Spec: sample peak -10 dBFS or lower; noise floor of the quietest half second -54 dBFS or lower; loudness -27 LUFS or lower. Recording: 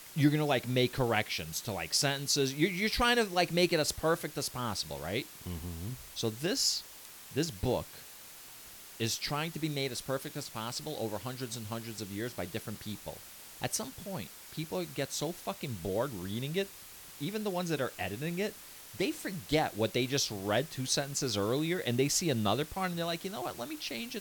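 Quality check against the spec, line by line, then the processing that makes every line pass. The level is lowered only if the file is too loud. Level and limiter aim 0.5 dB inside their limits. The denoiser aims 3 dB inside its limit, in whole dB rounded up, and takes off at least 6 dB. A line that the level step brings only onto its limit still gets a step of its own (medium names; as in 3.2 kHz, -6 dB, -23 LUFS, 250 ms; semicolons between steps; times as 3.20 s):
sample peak -12.5 dBFS: pass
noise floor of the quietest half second -50 dBFS: fail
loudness -33.0 LUFS: pass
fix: noise reduction 7 dB, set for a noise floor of -50 dBFS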